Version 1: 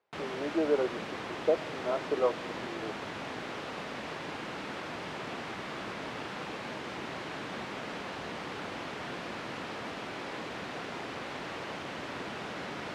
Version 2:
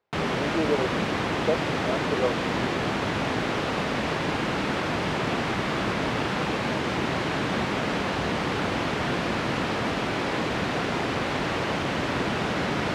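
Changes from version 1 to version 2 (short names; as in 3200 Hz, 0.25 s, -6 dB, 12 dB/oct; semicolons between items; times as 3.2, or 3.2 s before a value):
background +11.0 dB; master: add low shelf 180 Hz +9.5 dB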